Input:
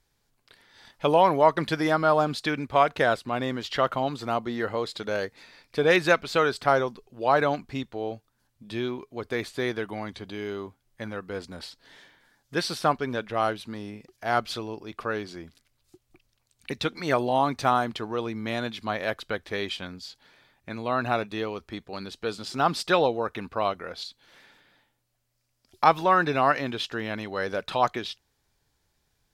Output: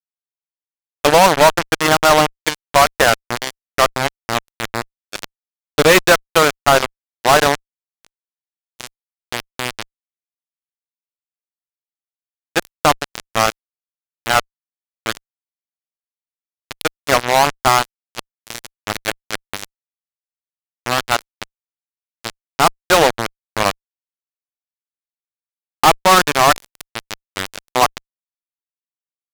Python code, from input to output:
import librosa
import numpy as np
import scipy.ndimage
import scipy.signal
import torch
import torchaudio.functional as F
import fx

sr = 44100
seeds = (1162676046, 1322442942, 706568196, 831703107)

y = fx.cheby_harmonics(x, sr, harmonics=(3, 7), levels_db=(-38, -17), full_scale_db=-4.0)
y = fx.fuzz(y, sr, gain_db=37.0, gate_db=-36.0)
y = y * 10.0 ** (9.0 / 20.0)